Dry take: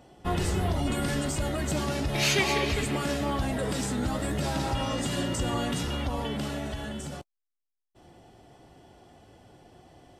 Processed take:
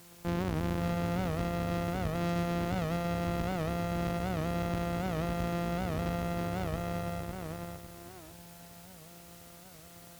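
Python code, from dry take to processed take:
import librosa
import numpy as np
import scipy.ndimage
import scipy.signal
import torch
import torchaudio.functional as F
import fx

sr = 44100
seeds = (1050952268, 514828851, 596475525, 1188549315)

p1 = np.r_[np.sort(x[:len(x) // 256 * 256].reshape(-1, 256), axis=1).ravel(), x[len(x) // 256 * 256:]]
p2 = fx.highpass(p1, sr, hz=71.0, slope=6)
p3 = fx.high_shelf(p2, sr, hz=2200.0, db=-11.0)
p4 = fx.notch(p3, sr, hz=6700.0, q=12.0)
p5 = fx.rider(p4, sr, range_db=10, speed_s=0.5)
p6 = p4 + F.gain(torch.from_numpy(p5), -2.0).numpy()
p7 = fx.quant_dither(p6, sr, seeds[0], bits=8, dither='triangular')
p8 = fx.tube_stage(p7, sr, drive_db=23.0, bias=0.8)
p9 = p8 + fx.echo_feedback(p8, sr, ms=553, feedback_pct=35, wet_db=-4.0, dry=0)
p10 = fx.record_warp(p9, sr, rpm=78.0, depth_cents=160.0)
y = F.gain(torch.from_numpy(p10), -3.5).numpy()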